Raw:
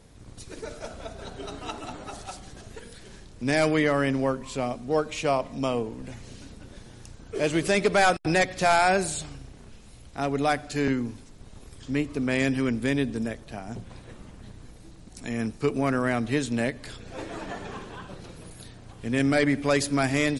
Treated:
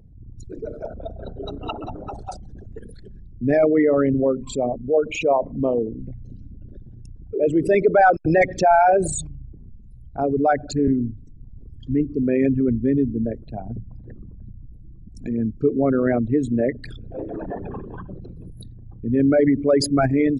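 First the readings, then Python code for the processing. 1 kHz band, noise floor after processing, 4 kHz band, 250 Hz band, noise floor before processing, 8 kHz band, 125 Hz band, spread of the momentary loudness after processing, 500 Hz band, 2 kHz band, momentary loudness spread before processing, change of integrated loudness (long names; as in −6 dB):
+5.5 dB, −42 dBFS, −4.0 dB, +6.0 dB, −48 dBFS, 0.0 dB, +4.0 dB, 19 LU, +7.0 dB, −1.5 dB, 21 LU, +5.5 dB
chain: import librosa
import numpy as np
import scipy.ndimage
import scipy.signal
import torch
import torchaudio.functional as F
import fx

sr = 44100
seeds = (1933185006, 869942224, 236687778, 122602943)

y = fx.envelope_sharpen(x, sr, power=3.0)
y = F.gain(torch.from_numpy(y), 6.0).numpy()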